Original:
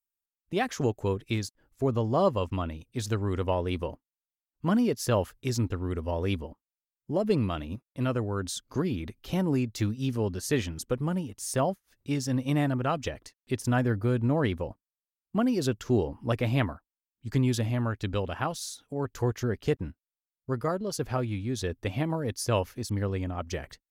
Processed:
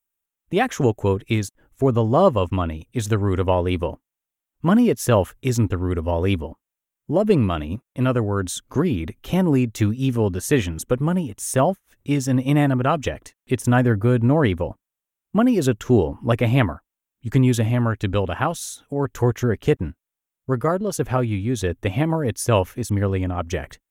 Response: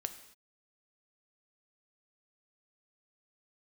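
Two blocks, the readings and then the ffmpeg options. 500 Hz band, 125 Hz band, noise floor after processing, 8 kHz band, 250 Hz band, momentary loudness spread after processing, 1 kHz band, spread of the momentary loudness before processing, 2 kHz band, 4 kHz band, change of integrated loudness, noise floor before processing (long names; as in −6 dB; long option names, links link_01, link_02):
+8.5 dB, +8.5 dB, below −85 dBFS, +7.0 dB, +8.5 dB, 9 LU, +8.5 dB, 9 LU, +8.0 dB, +5.0 dB, +8.5 dB, below −85 dBFS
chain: -af "equalizer=frequency=4700:width_type=o:width=0.45:gain=-11.5,volume=8.5dB"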